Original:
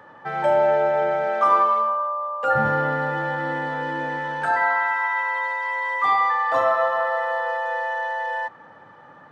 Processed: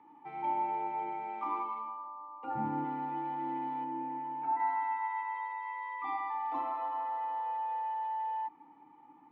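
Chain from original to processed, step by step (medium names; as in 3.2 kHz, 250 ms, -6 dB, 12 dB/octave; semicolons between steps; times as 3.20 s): 2.04–2.85 s: tilt EQ -2 dB/octave; vowel filter u; 3.84–4.60 s: distance through air 460 m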